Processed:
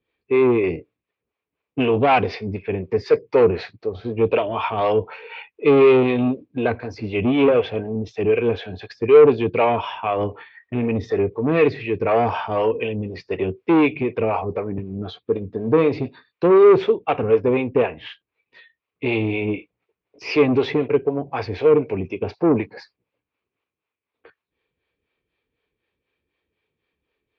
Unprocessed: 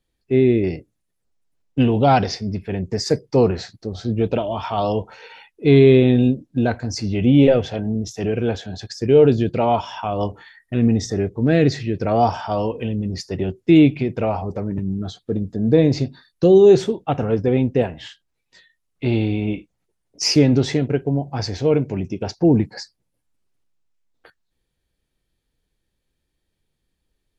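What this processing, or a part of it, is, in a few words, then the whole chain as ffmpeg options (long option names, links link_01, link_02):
guitar amplifier with harmonic tremolo: -filter_complex "[0:a]acrossover=split=420[link_01][link_02];[link_01]aeval=exprs='val(0)*(1-0.7/2+0.7/2*cos(2*PI*4*n/s))':channel_layout=same[link_03];[link_02]aeval=exprs='val(0)*(1-0.7/2-0.7/2*cos(2*PI*4*n/s))':channel_layout=same[link_04];[link_03][link_04]amix=inputs=2:normalize=0,asoftclip=type=tanh:threshold=-16dB,highpass=99,equalizer=frequency=140:width_type=q:width=4:gain=-7,equalizer=frequency=200:width_type=q:width=4:gain=-5,equalizer=frequency=440:width_type=q:width=4:gain=8,equalizer=frequency=1100:width_type=q:width=4:gain=7,equalizer=frequency=2400:width_type=q:width=4:gain=10,lowpass=frequency=3500:width=0.5412,lowpass=frequency=3500:width=1.3066,volume=3.5dB"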